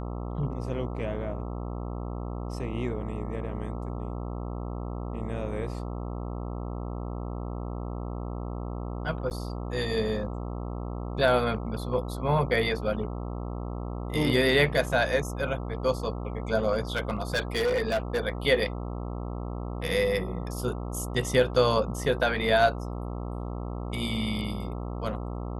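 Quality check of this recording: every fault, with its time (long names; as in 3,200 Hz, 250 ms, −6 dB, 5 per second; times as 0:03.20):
mains buzz 60 Hz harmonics 22 −34 dBFS
0:09.30–0:09.31: drop-out 9.5 ms
0:16.95–0:18.20: clipping −22 dBFS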